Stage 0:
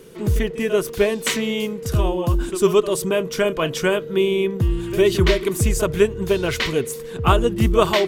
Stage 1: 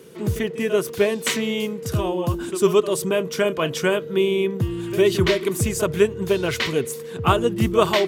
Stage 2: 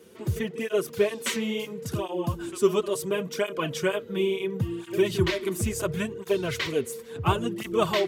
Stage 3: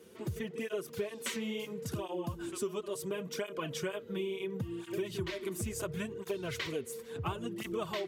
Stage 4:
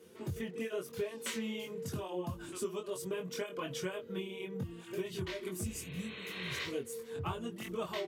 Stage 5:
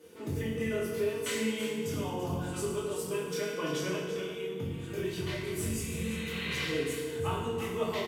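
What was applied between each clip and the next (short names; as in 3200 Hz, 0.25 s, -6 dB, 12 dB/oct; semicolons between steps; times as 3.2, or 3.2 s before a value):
HPF 86 Hz 24 dB/oct; gain -1 dB
tape flanging out of phase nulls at 0.72 Hz, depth 7.7 ms; gain -3 dB
compressor 4:1, threshold -30 dBFS, peak gain reduction 13 dB; gain -4 dB
spectral repair 5.69–6.58, 250–4300 Hz both; doubler 22 ms -4 dB; gain -3 dB
on a send: echo 0.338 s -10 dB; on the sum: FDN reverb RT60 1.4 s, low-frequency decay 1.35×, high-frequency decay 0.8×, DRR -3.5 dB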